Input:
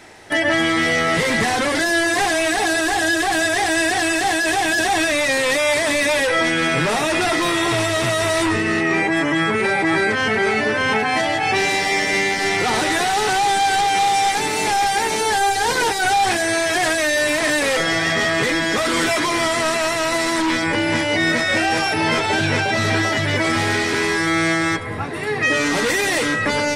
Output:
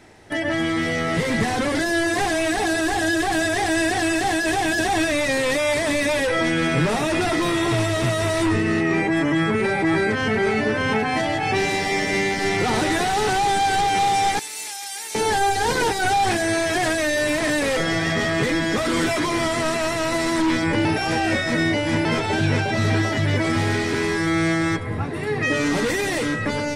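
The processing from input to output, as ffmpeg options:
-filter_complex "[0:a]asettb=1/sr,asplit=3[a][b][c];[a]atrim=end=14.394[d];[b]atrim=start=14.39:end=15.15,asetpts=PTS-STARTPTS,afade=t=in:d=0.004:c=qsin,afade=t=out:st=0.756:d=0.004:c=qsin,aderivative[e];[c]atrim=start=15.146[f];[d][e]acrossfade=d=0.004:c1=hsin:c2=qsin[g];[g][f]acrossfade=d=0.004:c1=qsin:c2=hsin,asplit=3[h][i][j];[h]atrim=end=20.852[k];[i]atrim=start=20.848:end=22.052,asetpts=PTS-STARTPTS,areverse[l];[j]atrim=start=22.048[m];[k][l]acrossfade=d=0.004:c1=hsin:c2=hsin[n];[n][m]acrossfade=d=0.004:c1=hsin:c2=hsin,lowshelf=f=390:g=10,dynaudnorm=f=530:g=5:m=11.5dB,volume=-8.5dB"

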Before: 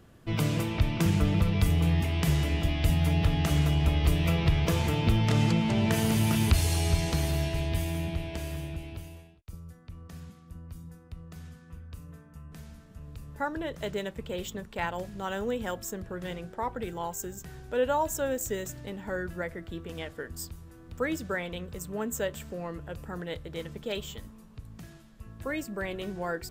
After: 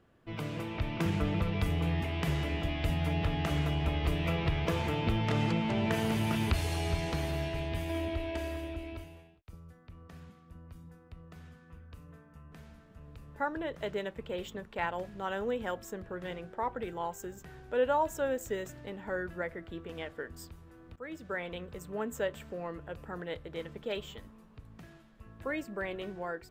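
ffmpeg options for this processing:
-filter_complex "[0:a]asettb=1/sr,asplit=3[a][b][c];[a]atrim=end=7.894[d];[b]atrim=start=7.89:end=9.04,asetpts=PTS-STARTPTS,afade=t=in:d=0.004:c=qsin,afade=t=out:st=1.146:d=0.004:c=qsin,aecho=1:1:3.1:0.94,atrim=end_sample=50715[e];[c]atrim=start=9.036[f];[d][e]acrossfade=d=0.004:c1=hsin:c2=qsin[g];[g][f]acrossfade=d=0.004:c1=qsin:c2=hsin,asplit=2[h][i];[h]atrim=end=20.96,asetpts=PTS-STARTPTS,afade=t=out:st=20.956:d=0.004:c=hsin:silence=0.125893[j];[i]atrim=start=20.96,asetpts=PTS-STARTPTS,afade=t=in:d=0.56:silence=0.125893[k];[j][k]concat=n=2:v=0:a=1,dynaudnorm=f=510:g=3:m=6dB,bass=f=250:g=-6,treble=f=4k:g=-11,volume=-7dB"

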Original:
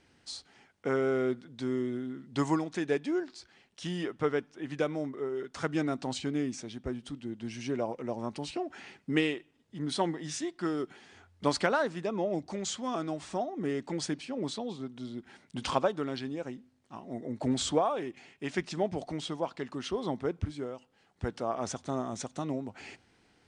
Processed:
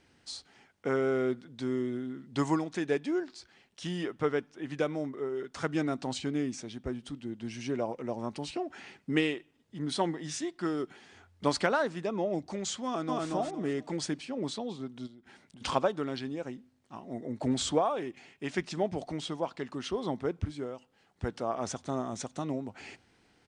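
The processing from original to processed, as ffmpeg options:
-filter_complex "[0:a]asplit=2[a][b];[b]afade=t=in:st=12.85:d=0.01,afade=t=out:st=13.27:d=0.01,aecho=0:1:230|460|690|920:0.944061|0.283218|0.0849655|0.0254896[c];[a][c]amix=inputs=2:normalize=0,asplit=3[d][e][f];[d]afade=t=out:st=15.06:d=0.02[g];[e]acompressor=threshold=-50dB:ratio=10:attack=3.2:release=140:knee=1:detection=peak,afade=t=in:st=15.06:d=0.02,afade=t=out:st=15.6:d=0.02[h];[f]afade=t=in:st=15.6:d=0.02[i];[g][h][i]amix=inputs=3:normalize=0"

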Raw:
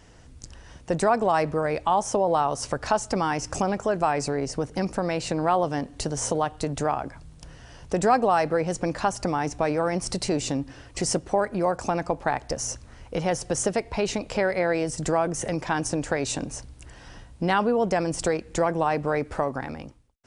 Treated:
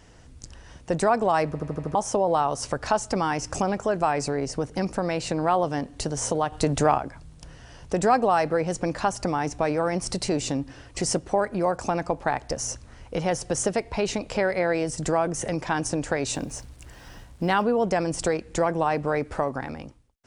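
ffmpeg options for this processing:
-filter_complex "[0:a]asettb=1/sr,asplit=3[a][b][c];[a]atrim=end=6.524[d];[b]atrim=start=6.52:end=6.98,asetpts=PTS-STARTPTS,afade=t=in:d=0.004:c=qsin,afade=t=out:st=0.456:d=0.004:c=qsin,acontrast=32[e];[c]atrim=start=6.976[f];[d][e]acrossfade=d=0.004:c1=hsin:c2=qsin[g];[g][f]acrossfade=d=0.004:c1=qsin:c2=hsin,asettb=1/sr,asplit=3[h][i][j];[h]atrim=end=16.324[k];[i]atrim=start=16.32:end=17.62,asetpts=PTS-STARTPTS,afade=t=in:d=0.004:c=qsin,afade=t=out:st=1.296:d=0.004:c=qsin,acrusher=bits=8:mix=0:aa=0.5[l];[j]atrim=start=17.616[m];[k][l]acrossfade=d=0.004:c1=hsin:c2=qsin[n];[n][m]acrossfade=d=0.004:c1=qsin:c2=hsin,asplit=7[o][p][q][r][s][t][u];[o]atrim=end=1.552[v];[p]atrim=start=1.468:end=1.552[w];[q]atrim=start=1.468:end=1.552[x];[r]atrim=start=1.468:end=1.552[y];[s]atrim=start=1.468:end=1.552[z];[t]atrim=start=1.468:end=1.552[aa];[u]atrim=start=1.948[ab];[v][w]acrossfade=d=0.004:c1=hsin:c2=hsin[ac];[ac][x]acrossfade=d=0.004:c1=hsin:c2=hsin[ad];[ad][y]acrossfade=d=0.004:c1=hsin:c2=hsin[ae];[ae][z]acrossfade=d=0.004:c1=hsin:c2=hsin[af];[af][aa]acrossfade=d=0.004:c1=hsin:c2=hsin[ag];[ag][ab]acrossfade=d=0.004:c1=hsin:c2=hsin"

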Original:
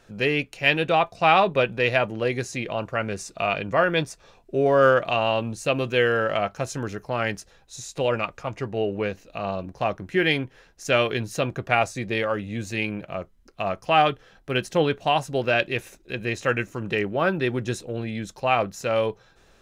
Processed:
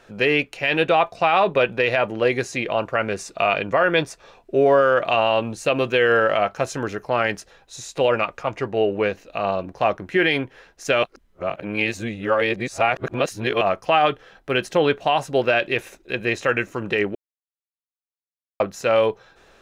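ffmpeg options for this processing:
-filter_complex "[0:a]asplit=5[a][b][c][d][e];[a]atrim=end=11.032[f];[b]atrim=start=11.028:end=13.612,asetpts=PTS-STARTPTS,areverse[g];[c]atrim=start=13.608:end=17.15,asetpts=PTS-STARTPTS,afade=t=out:st=3.538:d=0.004:c=hsin[h];[d]atrim=start=17.15:end=18.6,asetpts=PTS-STARTPTS,volume=0[i];[e]atrim=start=18.6,asetpts=PTS-STARTPTS,afade=t=in:d=0.004:c=hsin[j];[f][g]acrossfade=d=0.004:c1=hsin:c2=hsin[k];[h][i][j]concat=n=3:v=0:a=1[l];[k][l]acrossfade=d=0.004:c1=hsin:c2=hsin,bass=f=250:g=-8,treble=f=4k:g=-6,alimiter=level_in=13.5dB:limit=-1dB:release=50:level=0:latency=1,volume=-7dB"

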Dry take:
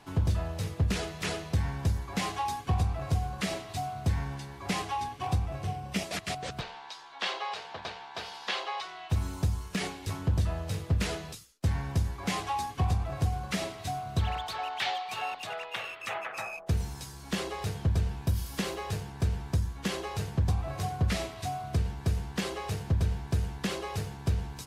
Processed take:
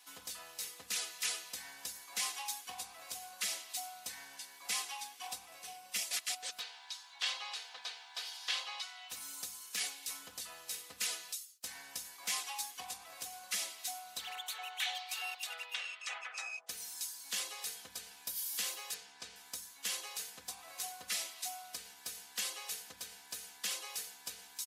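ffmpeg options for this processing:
-filter_complex "[0:a]asettb=1/sr,asplit=3[a][b][c];[a]atrim=end=14.334[d];[b]atrim=start=14.33:end=14.95,asetpts=PTS-STARTPTS,afade=t=in:d=0.004:c=qsin,afade=t=out:st=0.616:d=0.004:c=qsin,equalizer=f=4.9k:t=o:w=0.25:g=-13.5[e];[c]atrim=start=14.946[f];[d][e]acrossfade=d=0.004:c1=hsin:c2=qsin[g];[g][f]acrossfade=d=0.004:c1=qsin:c2=hsin,asettb=1/sr,asplit=3[h][i][j];[h]atrim=end=15.744[k];[i]atrim=start=15.74:end=16.69,asetpts=PTS-STARTPTS,afade=t=in:d=0.004:c=qsin,afade=t=out:st=0.946:d=0.004:c=qsin,lowpass=f=7.6k:w=0.5412,lowpass=f=7.6k:w=1.3066[l];[j]atrim=start=16.686[m];[k][l]acrossfade=d=0.004:c1=hsin:c2=qsin[n];[n][m]acrossfade=d=0.004:c1=qsin:c2=hsin,asettb=1/sr,asplit=3[o][p][q];[o]atrim=end=18.944[r];[p]atrim=start=18.94:end=19.36,asetpts=PTS-STARTPTS,afade=t=in:d=0.004:c=qsin,afade=t=out:st=0.416:d=0.004:c=qsin,lowpass=5.7k[s];[q]atrim=start=19.356[t];[r][s]acrossfade=d=0.004:c1=hsin:c2=qsin[u];[u][t]acrossfade=d=0.004:c1=qsin:c2=hsin,highpass=f=280:p=1,aderivative,aecho=1:1:4:0.57,volume=4dB"

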